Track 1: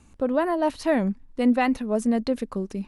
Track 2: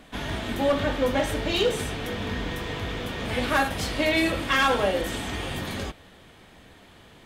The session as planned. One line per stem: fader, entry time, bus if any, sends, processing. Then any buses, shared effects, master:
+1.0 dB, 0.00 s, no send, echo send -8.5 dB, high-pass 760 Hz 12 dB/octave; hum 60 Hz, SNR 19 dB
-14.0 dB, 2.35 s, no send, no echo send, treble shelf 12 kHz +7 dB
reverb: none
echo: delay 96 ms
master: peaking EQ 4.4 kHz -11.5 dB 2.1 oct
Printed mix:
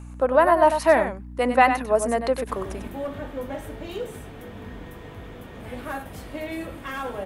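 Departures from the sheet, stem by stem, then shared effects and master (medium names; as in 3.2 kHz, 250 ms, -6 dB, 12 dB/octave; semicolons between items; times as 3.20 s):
stem 1 +1.0 dB -> +12.5 dB; stem 2 -14.0 dB -> -7.5 dB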